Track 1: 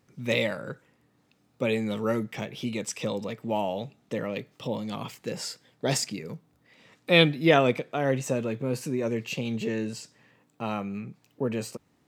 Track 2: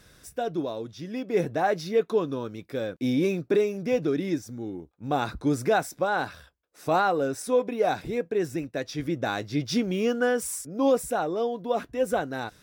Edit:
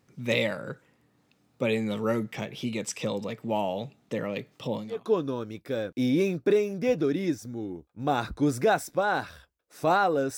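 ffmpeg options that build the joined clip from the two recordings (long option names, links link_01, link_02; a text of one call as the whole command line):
ffmpeg -i cue0.wav -i cue1.wav -filter_complex "[0:a]apad=whole_dur=10.37,atrim=end=10.37,atrim=end=5.12,asetpts=PTS-STARTPTS[link_01];[1:a]atrim=start=1.8:end=7.41,asetpts=PTS-STARTPTS[link_02];[link_01][link_02]acrossfade=duration=0.36:curve1=qua:curve2=qua" out.wav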